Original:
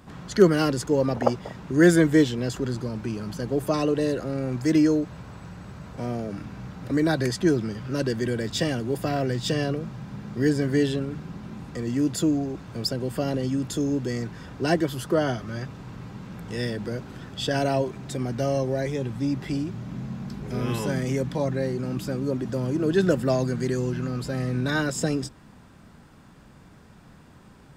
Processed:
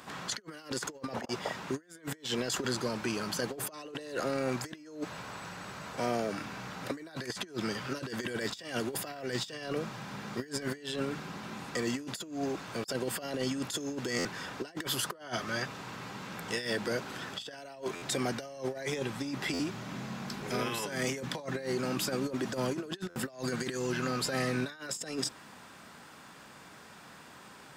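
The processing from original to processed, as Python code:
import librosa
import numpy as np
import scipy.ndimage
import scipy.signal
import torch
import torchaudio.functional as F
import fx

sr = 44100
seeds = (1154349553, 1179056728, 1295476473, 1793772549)

y = fx.highpass(x, sr, hz=1000.0, slope=6)
y = fx.over_compress(y, sr, threshold_db=-38.0, ratio=-0.5)
y = fx.buffer_glitch(y, sr, at_s=(14.18, 17.95, 19.53, 23.09), block=512, repeats=5)
y = y * librosa.db_to_amplitude(3.0)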